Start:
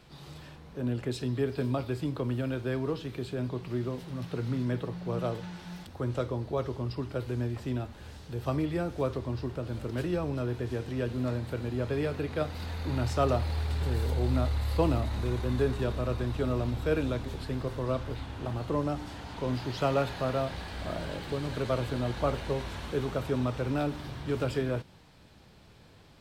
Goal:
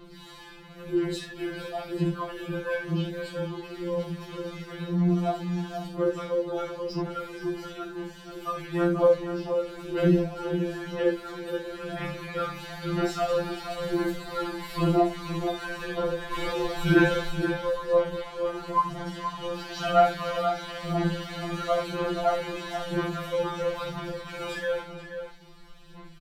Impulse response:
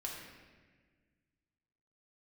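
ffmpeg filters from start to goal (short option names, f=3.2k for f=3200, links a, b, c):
-filter_complex "[0:a]asettb=1/sr,asplit=3[a][b][c];[a]atrim=end=16.314[d];[b]atrim=start=16.31:end=17.3,asetpts=PTS-STARTPTS,afade=t=in:d=0.004:c=qsin,afade=t=out:st=0.986:d=0.004:c=qsin,acontrast=78[e];[c]atrim=start=17.296[f];[d][e]acrossfade=d=0.004:c1=hsin:c2=qsin[g];[g][f]acrossfade=d=0.004:c1=qsin:c2=hsin,aphaser=in_gain=1:out_gain=1:delay=2.5:decay=0.76:speed=1:type=sinusoidal,asplit=2[h][i];[i]adelay=478.1,volume=-8dB,highshelf=f=4k:g=-10.8[j];[h][j]amix=inputs=2:normalize=0[k];[1:a]atrim=start_sample=2205,atrim=end_sample=3969[l];[k][l]afir=irnorm=-1:irlink=0,afftfilt=real='re*2.83*eq(mod(b,8),0)':imag='im*2.83*eq(mod(b,8),0)':win_size=2048:overlap=0.75,volume=4dB"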